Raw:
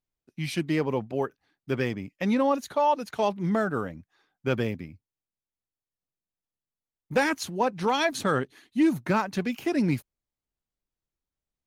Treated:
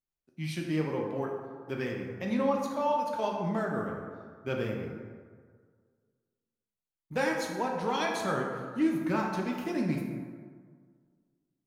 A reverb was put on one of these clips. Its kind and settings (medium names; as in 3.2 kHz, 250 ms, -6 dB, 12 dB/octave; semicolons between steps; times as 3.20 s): plate-style reverb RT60 1.8 s, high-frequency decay 0.45×, DRR -0.5 dB; trim -8 dB